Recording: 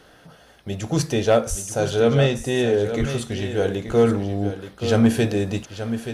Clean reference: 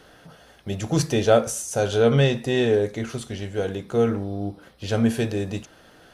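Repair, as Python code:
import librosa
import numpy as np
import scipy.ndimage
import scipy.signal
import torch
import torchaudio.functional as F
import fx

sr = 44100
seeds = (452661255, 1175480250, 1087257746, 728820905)

y = fx.fix_declip(x, sr, threshold_db=-8.0)
y = fx.fix_deplosive(y, sr, at_s=(1.49, 2.99))
y = fx.fix_echo_inverse(y, sr, delay_ms=878, level_db=-10.0)
y = fx.fix_level(y, sr, at_s=2.86, step_db=-4.0)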